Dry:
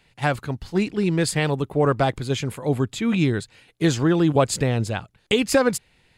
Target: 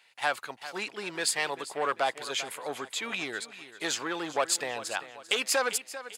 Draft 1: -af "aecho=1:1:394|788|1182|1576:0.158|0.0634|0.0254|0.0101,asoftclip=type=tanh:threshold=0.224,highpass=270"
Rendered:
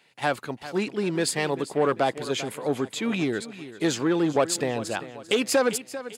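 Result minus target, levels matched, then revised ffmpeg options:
250 Hz band +10.5 dB
-af "aecho=1:1:394|788|1182|1576:0.158|0.0634|0.0254|0.0101,asoftclip=type=tanh:threshold=0.224,highpass=820"

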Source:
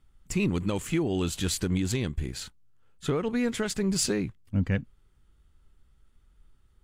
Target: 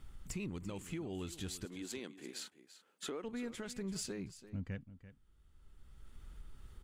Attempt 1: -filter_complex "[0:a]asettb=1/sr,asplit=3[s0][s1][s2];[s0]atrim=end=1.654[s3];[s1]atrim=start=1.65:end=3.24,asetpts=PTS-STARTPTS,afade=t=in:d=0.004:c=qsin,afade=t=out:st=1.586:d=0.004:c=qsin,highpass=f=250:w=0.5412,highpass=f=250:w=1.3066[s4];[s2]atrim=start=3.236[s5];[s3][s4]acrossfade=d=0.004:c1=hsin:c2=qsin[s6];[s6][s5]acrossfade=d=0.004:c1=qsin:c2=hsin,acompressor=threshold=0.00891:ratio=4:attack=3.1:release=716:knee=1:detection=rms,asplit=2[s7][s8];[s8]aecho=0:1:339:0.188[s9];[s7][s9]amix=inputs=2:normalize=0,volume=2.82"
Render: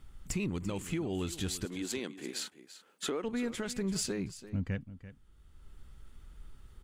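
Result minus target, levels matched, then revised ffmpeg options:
compression: peak gain reduction -7.5 dB
-filter_complex "[0:a]asettb=1/sr,asplit=3[s0][s1][s2];[s0]atrim=end=1.654[s3];[s1]atrim=start=1.65:end=3.24,asetpts=PTS-STARTPTS,afade=t=in:d=0.004:c=qsin,afade=t=out:st=1.586:d=0.004:c=qsin,highpass=f=250:w=0.5412,highpass=f=250:w=1.3066[s4];[s2]atrim=start=3.236[s5];[s3][s4]acrossfade=d=0.004:c1=hsin:c2=qsin[s6];[s6][s5]acrossfade=d=0.004:c1=qsin:c2=hsin,acompressor=threshold=0.00282:ratio=4:attack=3.1:release=716:knee=1:detection=rms,asplit=2[s7][s8];[s8]aecho=0:1:339:0.188[s9];[s7][s9]amix=inputs=2:normalize=0,volume=2.82"

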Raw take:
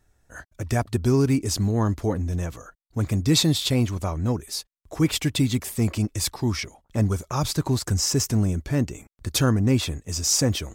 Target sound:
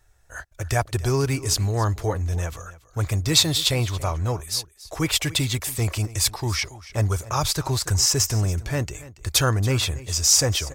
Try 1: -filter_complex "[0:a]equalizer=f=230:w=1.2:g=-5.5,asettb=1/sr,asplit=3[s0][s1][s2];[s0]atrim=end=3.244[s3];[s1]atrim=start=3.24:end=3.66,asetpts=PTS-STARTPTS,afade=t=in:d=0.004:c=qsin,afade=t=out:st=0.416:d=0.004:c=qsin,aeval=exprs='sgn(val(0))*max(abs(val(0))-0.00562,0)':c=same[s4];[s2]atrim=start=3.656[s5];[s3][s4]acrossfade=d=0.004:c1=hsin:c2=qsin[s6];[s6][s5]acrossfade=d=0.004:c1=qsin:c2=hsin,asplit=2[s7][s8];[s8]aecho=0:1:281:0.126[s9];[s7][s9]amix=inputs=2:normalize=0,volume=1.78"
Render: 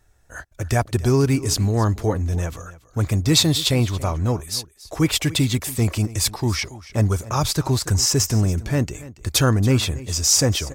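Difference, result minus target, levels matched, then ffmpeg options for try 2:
250 Hz band +5.5 dB
-filter_complex "[0:a]equalizer=f=230:w=1.2:g=-16.5,asettb=1/sr,asplit=3[s0][s1][s2];[s0]atrim=end=3.244[s3];[s1]atrim=start=3.24:end=3.66,asetpts=PTS-STARTPTS,afade=t=in:d=0.004:c=qsin,afade=t=out:st=0.416:d=0.004:c=qsin,aeval=exprs='sgn(val(0))*max(abs(val(0))-0.00562,0)':c=same[s4];[s2]atrim=start=3.656[s5];[s3][s4]acrossfade=d=0.004:c1=hsin:c2=qsin[s6];[s6][s5]acrossfade=d=0.004:c1=qsin:c2=hsin,asplit=2[s7][s8];[s8]aecho=0:1:281:0.126[s9];[s7][s9]amix=inputs=2:normalize=0,volume=1.78"

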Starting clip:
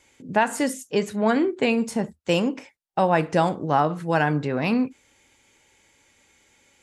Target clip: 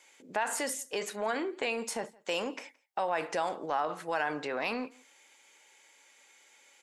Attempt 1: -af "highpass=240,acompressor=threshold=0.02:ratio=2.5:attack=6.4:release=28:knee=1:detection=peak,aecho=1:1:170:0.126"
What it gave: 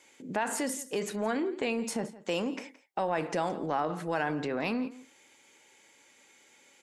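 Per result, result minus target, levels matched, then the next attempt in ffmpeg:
250 Hz band +6.0 dB; echo-to-direct +8 dB
-af "highpass=570,acompressor=threshold=0.02:ratio=2.5:attack=6.4:release=28:knee=1:detection=peak,aecho=1:1:170:0.126"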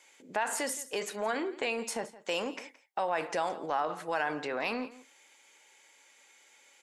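echo-to-direct +8 dB
-af "highpass=570,acompressor=threshold=0.02:ratio=2.5:attack=6.4:release=28:knee=1:detection=peak,aecho=1:1:170:0.0501"

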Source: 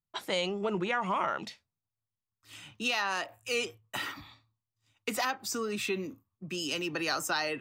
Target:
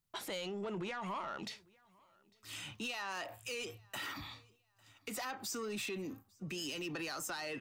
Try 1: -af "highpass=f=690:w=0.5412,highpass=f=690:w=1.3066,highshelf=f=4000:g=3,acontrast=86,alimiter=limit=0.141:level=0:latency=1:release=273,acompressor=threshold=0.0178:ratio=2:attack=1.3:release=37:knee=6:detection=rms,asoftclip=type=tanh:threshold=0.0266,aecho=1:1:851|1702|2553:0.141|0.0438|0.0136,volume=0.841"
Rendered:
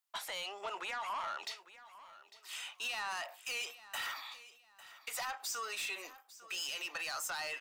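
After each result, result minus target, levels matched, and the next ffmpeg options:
500 Hz band -8.0 dB; echo-to-direct +10.5 dB; compression: peak gain reduction -3.5 dB
-af "highshelf=f=4000:g=3,acontrast=86,alimiter=limit=0.141:level=0:latency=1:release=273,acompressor=threshold=0.0178:ratio=2:attack=1.3:release=37:knee=6:detection=rms,asoftclip=type=tanh:threshold=0.0266,aecho=1:1:851|1702|2553:0.141|0.0438|0.0136,volume=0.841"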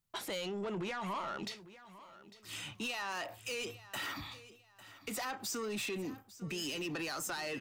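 echo-to-direct +10.5 dB; compression: peak gain reduction -3.5 dB
-af "highshelf=f=4000:g=3,acontrast=86,alimiter=limit=0.141:level=0:latency=1:release=273,acompressor=threshold=0.0178:ratio=2:attack=1.3:release=37:knee=6:detection=rms,asoftclip=type=tanh:threshold=0.0266,aecho=1:1:851|1702:0.0422|0.0131,volume=0.841"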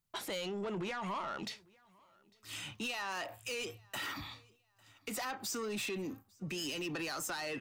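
compression: peak gain reduction -3.5 dB
-af "highshelf=f=4000:g=3,acontrast=86,alimiter=limit=0.141:level=0:latency=1:release=273,acompressor=threshold=0.00841:ratio=2:attack=1.3:release=37:knee=6:detection=rms,asoftclip=type=tanh:threshold=0.0266,aecho=1:1:851|1702:0.0422|0.0131,volume=0.841"

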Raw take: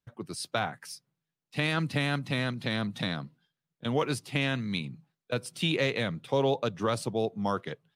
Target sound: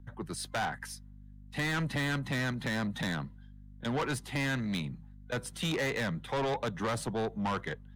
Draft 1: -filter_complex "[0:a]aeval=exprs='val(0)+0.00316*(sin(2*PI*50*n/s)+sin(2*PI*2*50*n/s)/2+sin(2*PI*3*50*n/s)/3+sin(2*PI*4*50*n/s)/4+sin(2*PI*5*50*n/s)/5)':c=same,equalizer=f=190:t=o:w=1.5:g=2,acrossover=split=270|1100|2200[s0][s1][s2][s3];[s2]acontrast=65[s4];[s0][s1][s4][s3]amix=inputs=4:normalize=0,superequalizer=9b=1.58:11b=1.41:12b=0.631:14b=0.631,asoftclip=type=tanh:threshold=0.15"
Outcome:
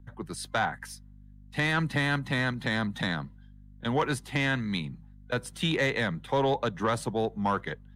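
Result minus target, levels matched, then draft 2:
saturation: distortion -12 dB
-filter_complex "[0:a]aeval=exprs='val(0)+0.00316*(sin(2*PI*50*n/s)+sin(2*PI*2*50*n/s)/2+sin(2*PI*3*50*n/s)/3+sin(2*PI*4*50*n/s)/4+sin(2*PI*5*50*n/s)/5)':c=same,equalizer=f=190:t=o:w=1.5:g=2,acrossover=split=270|1100|2200[s0][s1][s2][s3];[s2]acontrast=65[s4];[s0][s1][s4][s3]amix=inputs=4:normalize=0,superequalizer=9b=1.58:11b=1.41:12b=0.631:14b=0.631,asoftclip=type=tanh:threshold=0.0398"

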